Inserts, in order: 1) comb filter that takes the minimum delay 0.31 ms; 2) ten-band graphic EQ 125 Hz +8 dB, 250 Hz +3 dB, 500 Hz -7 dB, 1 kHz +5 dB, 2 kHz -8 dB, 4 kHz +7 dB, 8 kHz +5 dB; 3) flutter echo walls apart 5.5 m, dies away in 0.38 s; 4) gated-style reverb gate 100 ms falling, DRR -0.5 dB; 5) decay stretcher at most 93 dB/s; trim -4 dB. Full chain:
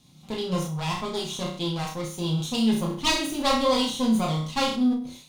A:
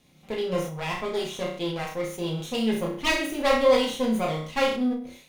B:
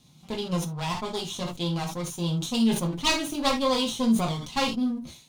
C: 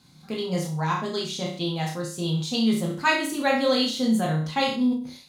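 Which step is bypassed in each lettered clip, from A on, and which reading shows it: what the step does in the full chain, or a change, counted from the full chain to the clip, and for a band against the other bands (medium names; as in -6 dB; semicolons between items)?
2, momentary loudness spread change +2 LU; 3, loudness change -1.5 LU; 1, 2 kHz band +4.5 dB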